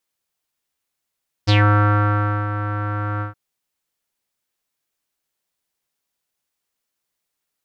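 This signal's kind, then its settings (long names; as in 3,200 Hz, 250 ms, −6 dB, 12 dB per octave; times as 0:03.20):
subtractive voice square G#2 12 dB per octave, low-pass 1,400 Hz, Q 6.2, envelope 2 octaves, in 0.16 s, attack 22 ms, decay 0.98 s, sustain −11 dB, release 0.13 s, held 1.74 s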